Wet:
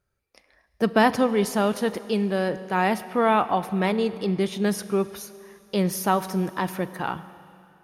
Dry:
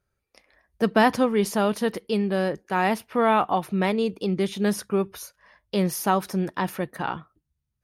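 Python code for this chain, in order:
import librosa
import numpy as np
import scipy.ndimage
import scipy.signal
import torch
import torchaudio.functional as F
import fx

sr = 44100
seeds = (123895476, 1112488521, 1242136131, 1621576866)

y = fx.rev_schroeder(x, sr, rt60_s=2.7, comb_ms=33, drr_db=14.5)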